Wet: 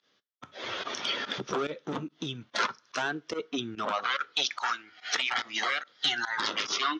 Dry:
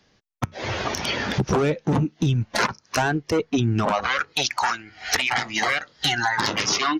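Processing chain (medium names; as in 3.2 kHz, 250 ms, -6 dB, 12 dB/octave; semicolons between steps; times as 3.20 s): cabinet simulation 290–7000 Hz, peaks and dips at 800 Hz -5 dB, 1.3 kHz +7 dB, 3.4 kHz +9 dB; two-slope reverb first 0.26 s, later 2 s, from -28 dB, DRR 18.5 dB; volume shaper 144 bpm, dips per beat 1, -18 dB, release 86 ms; trim -8.5 dB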